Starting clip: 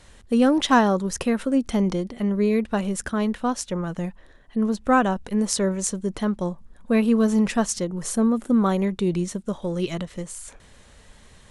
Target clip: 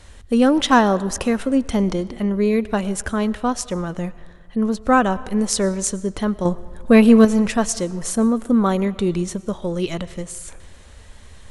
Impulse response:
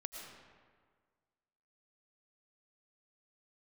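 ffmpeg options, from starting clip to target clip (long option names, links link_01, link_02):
-filter_complex "[0:a]asettb=1/sr,asplit=3[link_01][link_02][link_03];[link_01]atrim=end=6.454[link_04];[link_02]atrim=start=6.45:end=7.25,asetpts=PTS-STARTPTS,afade=type=in:duration=0.004:curve=qsin,afade=type=out:start_time=0.796:duration=0.004:curve=qsin,acontrast=68[link_05];[link_03]atrim=start=7.246[link_06];[link_04][link_05]acrossfade=duration=0.004:curve1=hsin:curve2=qsin[link_07];[link_07][link_06]acrossfade=duration=0.004:curve1=qsin:curve2=hsin,asplit=2[link_08][link_09];[link_09]lowshelf=frequency=140:width_type=q:width=3:gain=12.5[link_10];[1:a]atrim=start_sample=2205[link_11];[link_10][link_11]afir=irnorm=-1:irlink=0,volume=-11dB[link_12];[link_08][link_12]amix=inputs=2:normalize=0,volume=2dB"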